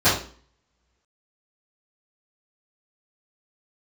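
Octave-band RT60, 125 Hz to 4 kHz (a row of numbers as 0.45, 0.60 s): 0.40, 0.55, 0.45, 0.45, 0.40, 0.40 s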